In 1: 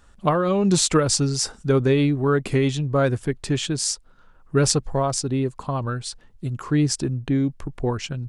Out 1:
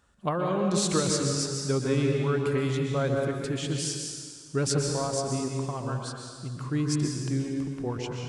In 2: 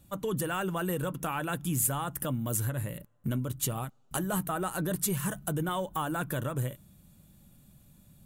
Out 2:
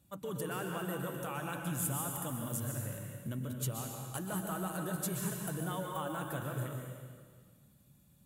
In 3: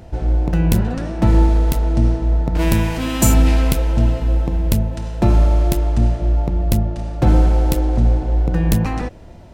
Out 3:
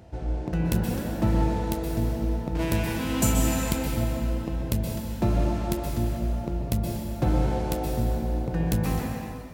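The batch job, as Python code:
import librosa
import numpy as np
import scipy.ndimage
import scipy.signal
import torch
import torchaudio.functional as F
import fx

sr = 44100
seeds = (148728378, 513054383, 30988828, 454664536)

y = scipy.signal.sosfilt(scipy.signal.butter(2, 61.0, 'highpass', fs=sr, output='sos'), x)
y = fx.rev_plate(y, sr, seeds[0], rt60_s=1.7, hf_ratio=1.0, predelay_ms=110, drr_db=1.0)
y = y * librosa.db_to_amplitude(-8.5)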